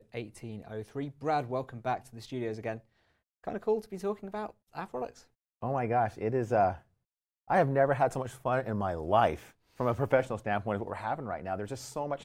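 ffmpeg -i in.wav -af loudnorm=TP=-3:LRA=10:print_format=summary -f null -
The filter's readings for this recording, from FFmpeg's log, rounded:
Input Integrated:    -32.3 LUFS
Input True Peak:     -11.9 dBTP
Input LRA:             6.5 LU
Input Threshold:     -42.7 LUFS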